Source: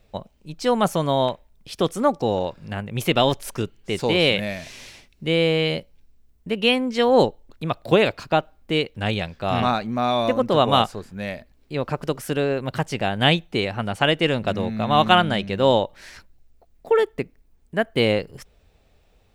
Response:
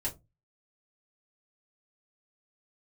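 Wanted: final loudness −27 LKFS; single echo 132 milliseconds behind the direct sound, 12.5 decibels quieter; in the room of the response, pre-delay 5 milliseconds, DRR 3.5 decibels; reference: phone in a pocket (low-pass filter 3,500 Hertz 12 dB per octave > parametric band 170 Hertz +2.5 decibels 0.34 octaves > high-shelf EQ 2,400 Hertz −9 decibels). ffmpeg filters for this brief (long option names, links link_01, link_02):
-filter_complex "[0:a]aecho=1:1:132:0.237,asplit=2[link_01][link_02];[1:a]atrim=start_sample=2205,adelay=5[link_03];[link_02][link_03]afir=irnorm=-1:irlink=0,volume=-6.5dB[link_04];[link_01][link_04]amix=inputs=2:normalize=0,lowpass=3500,equalizer=frequency=170:width_type=o:width=0.34:gain=2.5,highshelf=frequency=2400:gain=-9,volume=-6dB"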